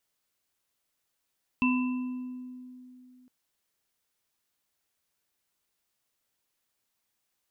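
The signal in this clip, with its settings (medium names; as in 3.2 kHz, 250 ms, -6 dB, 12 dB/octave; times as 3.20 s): sine partials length 1.66 s, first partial 252 Hz, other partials 1.01/2.67 kHz, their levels -8/-4 dB, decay 2.98 s, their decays 1.25/0.95 s, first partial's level -22 dB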